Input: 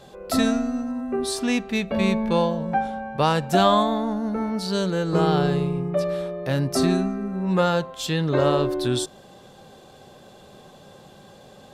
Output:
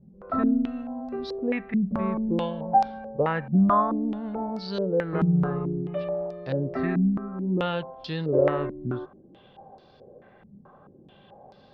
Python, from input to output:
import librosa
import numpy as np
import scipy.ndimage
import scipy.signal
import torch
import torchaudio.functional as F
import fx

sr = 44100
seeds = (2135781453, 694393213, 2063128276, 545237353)

y = fx.air_absorb(x, sr, metres=280.0)
y = fx.filter_held_lowpass(y, sr, hz=4.6, low_hz=200.0, high_hz=4900.0)
y = F.gain(torch.from_numpy(y), -6.5).numpy()